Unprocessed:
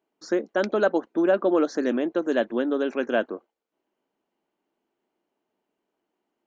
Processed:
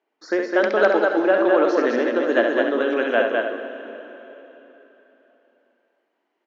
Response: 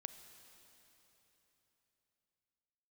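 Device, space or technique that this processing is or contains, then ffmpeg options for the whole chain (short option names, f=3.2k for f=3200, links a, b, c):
station announcement: -filter_complex "[0:a]highpass=360,lowpass=4.3k,equalizer=f=1.9k:t=o:w=0.53:g=5,aecho=1:1:67.06|207|282.8:0.562|0.708|0.282[a];[1:a]atrim=start_sample=2205[b];[a][b]afir=irnorm=-1:irlink=0,volume=8.5dB"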